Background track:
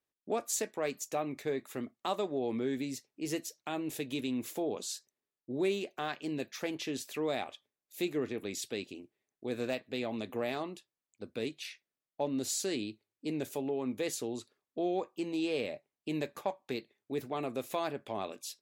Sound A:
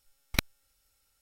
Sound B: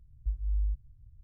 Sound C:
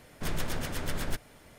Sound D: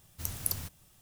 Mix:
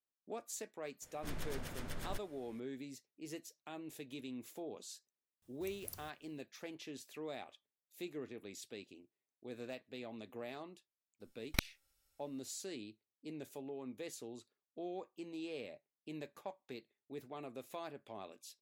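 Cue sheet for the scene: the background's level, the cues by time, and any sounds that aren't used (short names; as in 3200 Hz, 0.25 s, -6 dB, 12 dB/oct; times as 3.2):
background track -11.5 dB
1.02 add C -11 dB
5.42 add D -15 dB + tremolo saw down 2.5 Hz, depth 55%
11.2 add A -7 dB
not used: B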